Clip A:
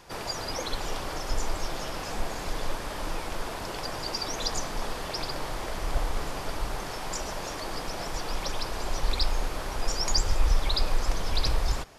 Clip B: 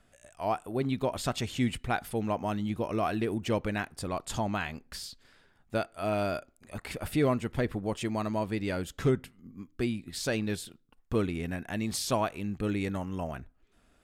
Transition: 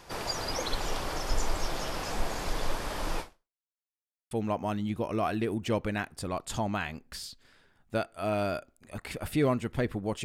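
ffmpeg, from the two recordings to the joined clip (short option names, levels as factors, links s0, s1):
-filter_complex "[0:a]apad=whole_dur=10.24,atrim=end=10.24,asplit=2[s0][s1];[s0]atrim=end=3.62,asetpts=PTS-STARTPTS,afade=t=out:st=3.2:d=0.42:c=exp[s2];[s1]atrim=start=3.62:end=4.31,asetpts=PTS-STARTPTS,volume=0[s3];[1:a]atrim=start=2.11:end=8.04,asetpts=PTS-STARTPTS,afade=t=in:d=0.004:c=hsin[s4];[s2][s3][s4]concat=n=3:v=0:a=1"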